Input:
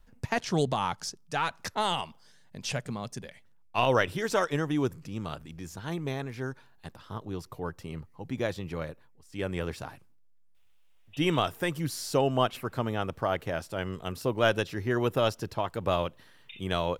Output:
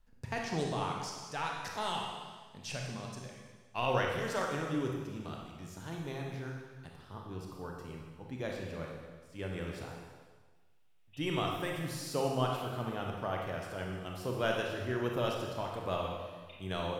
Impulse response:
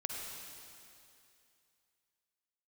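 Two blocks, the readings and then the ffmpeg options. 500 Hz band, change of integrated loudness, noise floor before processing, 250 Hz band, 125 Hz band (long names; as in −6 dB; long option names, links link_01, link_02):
−6.5 dB, −6.5 dB, −57 dBFS, −6.0 dB, −5.0 dB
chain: -filter_complex "[1:a]atrim=start_sample=2205,asetrate=79380,aresample=44100[link_01];[0:a][link_01]afir=irnorm=-1:irlink=0,volume=-2dB"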